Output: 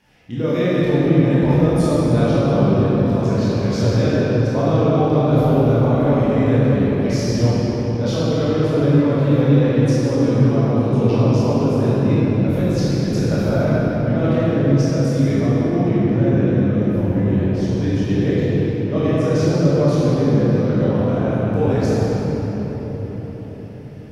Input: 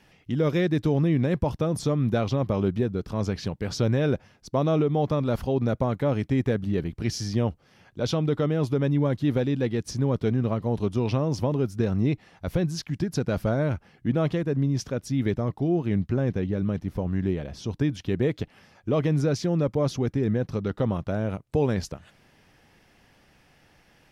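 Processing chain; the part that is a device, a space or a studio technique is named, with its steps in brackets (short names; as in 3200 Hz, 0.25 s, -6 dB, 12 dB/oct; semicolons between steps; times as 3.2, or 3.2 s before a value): cathedral (reverb RT60 5.2 s, pre-delay 18 ms, DRR -11 dB); gain -3.5 dB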